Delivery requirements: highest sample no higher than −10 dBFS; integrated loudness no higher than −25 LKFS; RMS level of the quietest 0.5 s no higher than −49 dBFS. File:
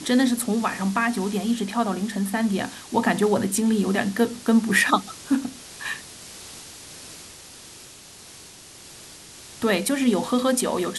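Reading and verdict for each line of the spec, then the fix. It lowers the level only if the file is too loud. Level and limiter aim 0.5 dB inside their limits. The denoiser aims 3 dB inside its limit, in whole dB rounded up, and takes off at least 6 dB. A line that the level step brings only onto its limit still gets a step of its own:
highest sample −5.0 dBFS: out of spec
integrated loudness −23.0 LKFS: out of spec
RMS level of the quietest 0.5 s −45 dBFS: out of spec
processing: broadband denoise 6 dB, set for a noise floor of −45 dBFS
level −2.5 dB
brickwall limiter −10.5 dBFS

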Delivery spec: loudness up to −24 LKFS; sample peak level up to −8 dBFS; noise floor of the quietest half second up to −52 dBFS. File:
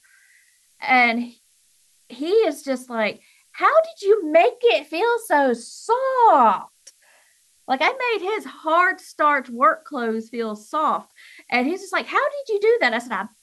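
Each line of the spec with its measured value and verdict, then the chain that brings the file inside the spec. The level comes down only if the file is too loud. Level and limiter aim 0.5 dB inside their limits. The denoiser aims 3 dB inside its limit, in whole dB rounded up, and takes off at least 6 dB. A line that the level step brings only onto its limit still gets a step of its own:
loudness −20.5 LKFS: out of spec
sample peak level −5.5 dBFS: out of spec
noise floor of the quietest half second −60 dBFS: in spec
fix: level −4 dB

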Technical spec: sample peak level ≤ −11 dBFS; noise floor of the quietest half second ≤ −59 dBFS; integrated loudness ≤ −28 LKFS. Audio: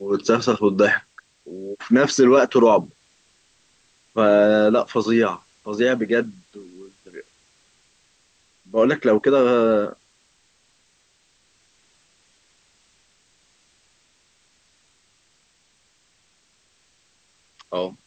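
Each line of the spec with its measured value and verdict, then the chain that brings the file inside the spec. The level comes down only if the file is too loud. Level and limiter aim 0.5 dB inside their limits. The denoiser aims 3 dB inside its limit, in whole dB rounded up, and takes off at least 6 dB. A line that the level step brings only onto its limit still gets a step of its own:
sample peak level −5.5 dBFS: out of spec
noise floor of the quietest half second −63 dBFS: in spec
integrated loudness −18.5 LKFS: out of spec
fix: level −10 dB

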